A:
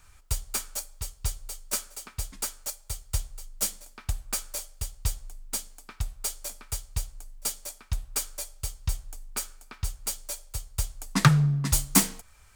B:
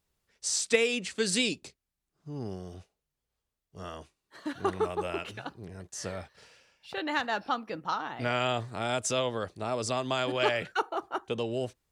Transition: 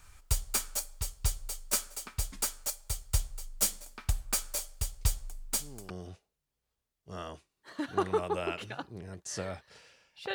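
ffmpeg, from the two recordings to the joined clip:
-filter_complex "[1:a]asplit=2[s0][s1];[0:a]apad=whole_dur=10.34,atrim=end=10.34,atrim=end=5.902[s2];[s1]atrim=start=2.568:end=7.01[s3];[s0]atrim=start=1.68:end=2.57,asetpts=PTS-STARTPTS,volume=0.251,afade=t=in:d=0.004:c=hsin,afade=t=out:st=0.886:d=0.004:c=hsin,adelay=220941S[s4];[s2][s3]acrossfade=d=0.004:c1=hsin:c2=hsin[s5];[s5][s4]amix=inputs=2:normalize=0"

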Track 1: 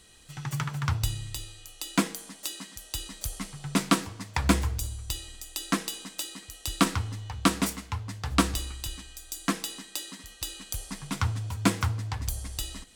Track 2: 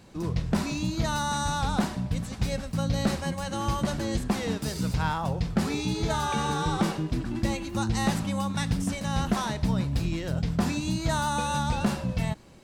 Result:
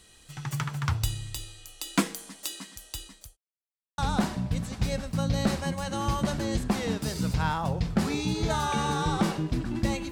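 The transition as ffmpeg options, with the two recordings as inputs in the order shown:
-filter_complex "[0:a]apad=whole_dur=10.11,atrim=end=10.11,asplit=2[s0][s1];[s0]atrim=end=3.37,asetpts=PTS-STARTPTS,afade=t=out:st=2.47:d=0.9:c=qsin[s2];[s1]atrim=start=3.37:end=3.98,asetpts=PTS-STARTPTS,volume=0[s3];[1:a]atrim=start=1.58:end=7.71,asetpts=PTS-STARTPTS,afade=t=in:d=0.004:c=hsin[s4];[s2][s3][s4]concat=n=3:v=0:a=1"

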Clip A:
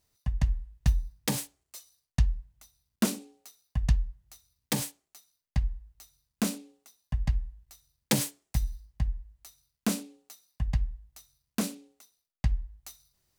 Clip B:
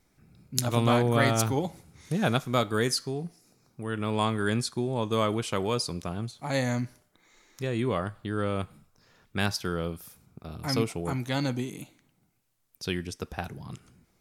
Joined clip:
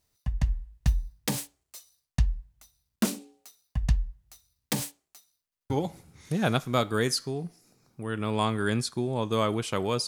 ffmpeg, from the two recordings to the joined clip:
-filter_complex "[0:a]apad=whole_dur=10.07,atrim=end=10.07,asplit=3[s0][s1][s2];[s0]atrim=end=5.522[s3];[s1]atrim=start=5.428:end=5.522[s4];[s2]atrim=start=5.428:end=5.522[s5];[1:a]atrim=start=1.498:end=5.87[s6];[s3][s4]acrossfade=d=0.004:c1=hsin:c2=hsin[s7];[s7][s5]acrossfade=d=0.004:c1=hsin:c2=hsin[s8];[s8][s6]acrossfade=d=0.004:c1=hsin:c2=hsin"

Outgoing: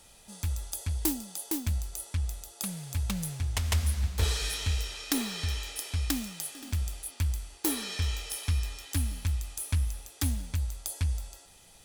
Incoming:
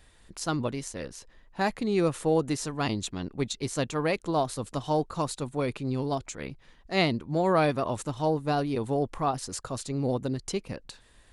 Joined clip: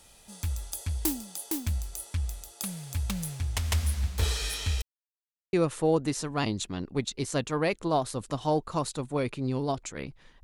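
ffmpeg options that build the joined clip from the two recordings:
-filter_complex "[0:a]apad=whole_dur=10.43,atrim=end=10.43,asplit=2[s0][s1];[s0]atrim=end=4.82,asetpts=PTS-STARTPTS,afade=t=out:st=4.816:d=0.004:c=hsin[s2];[s1]atrim=start=4.82:end=5.53,asetpts=PTS-STARTPTS,volume=0[s3];[1:a]atrim=start=1.96:end=6.86,asetpts=PTS-STARTPTS,afade=t=in:d=0.004:c=hsin[s4];[s2][s3][s4]concat=n=3:v=0:a=1"

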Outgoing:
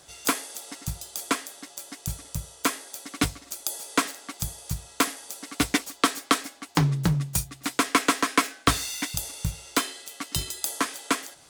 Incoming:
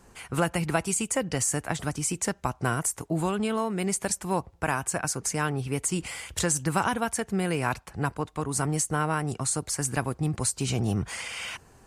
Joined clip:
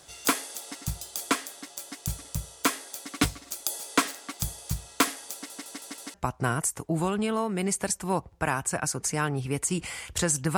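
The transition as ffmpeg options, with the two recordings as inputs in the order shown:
-filter_complex "[0:a]apad=whole_dur=10.57,atrim=end=10.57,asplit=5[s0][s1][s2][s3][s4];[s0]atrim=end=5.502[s5];[s1]atrim=start=5.338:end=5.502[s6];[s2]atrim=start=5.338:end=5.502[s7];[s3]atrim=start=5.338:end=5.502[s8];[s4]atrim=start=5.338:end=5.502[s9];[1:a]atrim=start=2.348:end=6.78[s10];[s5][s6]acrossfade=d=0.004:c1=hsin:c2=hsin[s11];[s11][s7]acrossfade=d=0.004:c1=hsin:c2=hsin[s12];[s12][s8]acrossfade=d=0.004:c1=hsin:c2=hsin[s13];[s13][s9]acrossfade=d=0.004:c1=hsin:c2=hsin[s14];[s14][s10]acrossfade=d=0.004:c1=hsin:c2=hsin"

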